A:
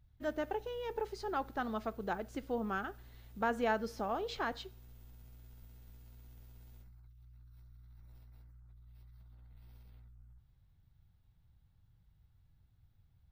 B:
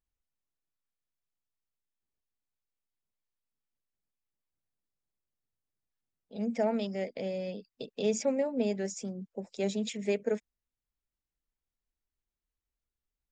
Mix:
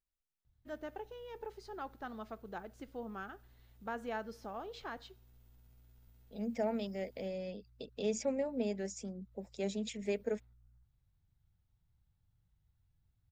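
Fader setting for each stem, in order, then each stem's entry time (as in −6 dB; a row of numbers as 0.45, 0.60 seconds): −7.5, −5.5 decibels; 0.45, 0.00 seconds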